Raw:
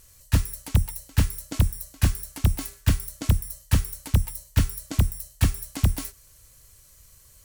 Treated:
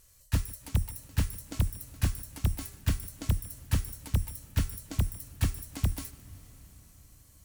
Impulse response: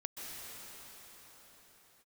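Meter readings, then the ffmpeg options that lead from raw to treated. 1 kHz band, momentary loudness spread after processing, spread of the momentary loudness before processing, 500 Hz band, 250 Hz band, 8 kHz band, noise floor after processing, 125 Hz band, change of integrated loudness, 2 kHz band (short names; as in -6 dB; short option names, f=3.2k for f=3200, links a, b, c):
-7.0 dB, 3 LU, 2 LU, -7.0 dB, -7.0 dB, -7.0 dB, -58 dBFS, -7.0 dB, -7.0 dB, -7.0 dB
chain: -filter_complex "[0:a]asplit=2[a][b];[1:a]atrim=start_sample=2205,adelay=149[c];[b][c]afir=irnorm=-1:irlink=0,volume=-16.5dB[d];[a][d]amix=inputs=2:normalize=0,volume=-7dB"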